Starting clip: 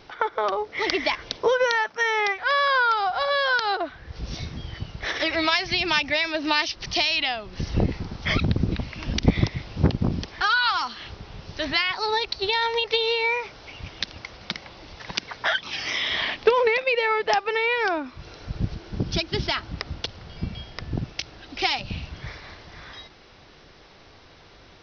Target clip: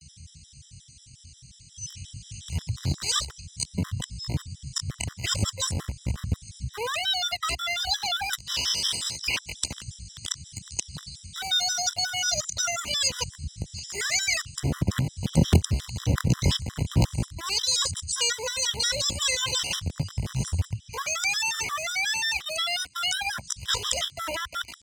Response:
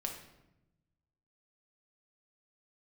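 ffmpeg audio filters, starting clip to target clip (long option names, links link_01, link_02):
-filter_complex "[0:a]areverse,acrossover=split=110|2200[link_01][link_02][link_03];[link_02]acrusher=bits=3:dc=4:mix=0:aa=0.000001[link_04];[link_01][link_04][link_03]amix=inputs=3:normalize=0,asetrate=70004,aresample=44100,atempo=0.629961,highpass=frequency=68:width=0.5412,highpass=frequency=68:width=1.3066,aemphasis=mode=reproduction:type=riaa,crystalizer=i=9.5:c=0,acompressor=threshold=-26dB:ratio=1.5,adynamicequalizer=threshold=0.00562:dfrequency=550:dqfactor=5.6:tfrequency=550:tqfactor=5.6:attack=5:release=100:ratio=0.375:range=1.5:mode=boostabove:tftype=bell,acrossover=split=380|3000[link_05][link_06][link_07];[link_06]acompressor=threshold=-26dB:ratio=4[link_08];[link_05][link_08][link_07]amix=inputs=3:normalize=0,afftfilt=real='re*gt(sin(2*PI*5.6*pts/sr)*(1-2*mod(floor(b*sr/1024/1000),2)),0)':imag='im*gt(sin(2*PI*5.6*pts/sr)*(1-2*mod(floor(b*sr/1024/1000),2)),0)':win_size=1024:overlap=0.75"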